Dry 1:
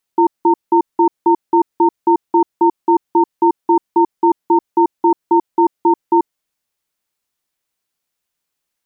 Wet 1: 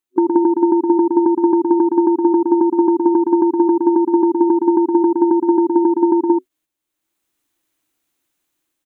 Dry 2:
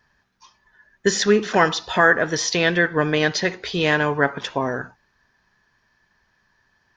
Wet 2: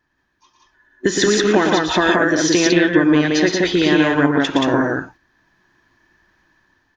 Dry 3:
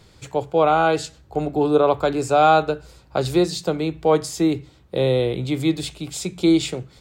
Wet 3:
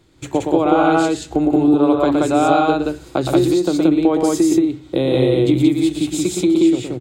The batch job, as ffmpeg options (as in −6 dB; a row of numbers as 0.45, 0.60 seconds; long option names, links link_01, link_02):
-filter_complex "[0:a]superequalizer=6b=3.55:14b=0.631,dynaudnorm=framelen=240:gausssize=5:maxgain=8dB,agate=range=-11dB:threshold=-43dB:ratio=16:detection=peak,acompressor=threshold=-19dB:ratio=6,asplit=2[link_01][link_02];[link_02]aecho=0:1:116.6|177.8:0.562|0.891[link_03];[link_01][link_03]amix=inputs=2:normalize=0,volume=5dB"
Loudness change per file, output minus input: +1.0, +4.0, +4.5 LU